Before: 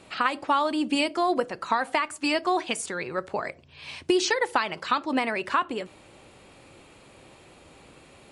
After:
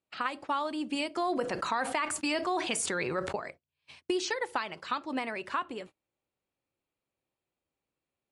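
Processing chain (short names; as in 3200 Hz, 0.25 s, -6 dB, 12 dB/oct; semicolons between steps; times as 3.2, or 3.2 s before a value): gate -38 dBFS, range -30 dB; 1.16–3.36 fast leveller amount 70%; gain -8 dB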